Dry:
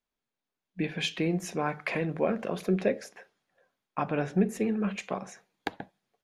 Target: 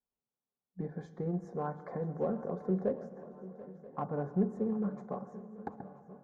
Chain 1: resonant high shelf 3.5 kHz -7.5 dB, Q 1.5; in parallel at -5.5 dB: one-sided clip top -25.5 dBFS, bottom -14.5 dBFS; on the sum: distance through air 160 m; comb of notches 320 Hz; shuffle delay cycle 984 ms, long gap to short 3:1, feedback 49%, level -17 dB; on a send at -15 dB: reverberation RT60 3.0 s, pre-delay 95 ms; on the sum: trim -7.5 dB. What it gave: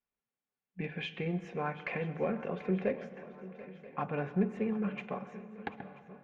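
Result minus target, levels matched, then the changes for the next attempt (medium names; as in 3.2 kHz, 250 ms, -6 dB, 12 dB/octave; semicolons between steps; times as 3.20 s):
2 kHz band +14.0 dB
add first: Butterworth band-stop 2.7 kHz, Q 0.5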